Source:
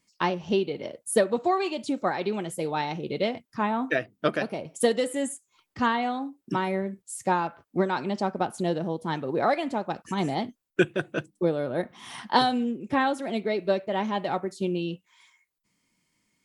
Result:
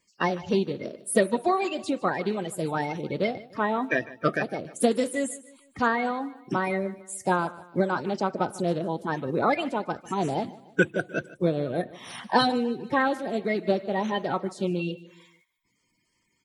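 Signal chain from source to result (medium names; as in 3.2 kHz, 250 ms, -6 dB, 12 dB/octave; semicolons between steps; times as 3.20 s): coarse spectral quantiser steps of 30 dB; feedback delay 151 ms, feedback 44%, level -19 dB; trim +1 dB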